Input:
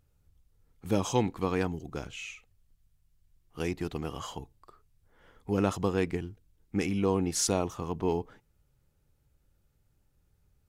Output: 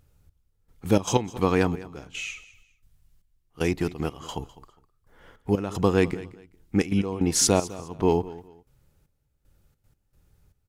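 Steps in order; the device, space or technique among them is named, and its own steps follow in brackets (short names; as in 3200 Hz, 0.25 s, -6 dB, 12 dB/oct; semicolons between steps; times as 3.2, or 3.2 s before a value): trance gate with a delay (step gate "xxx....xxx.x..x" 154 bpm -12 dB; feedback echo 0.204 s, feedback 25%, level -18 dB); gain +7.5 dB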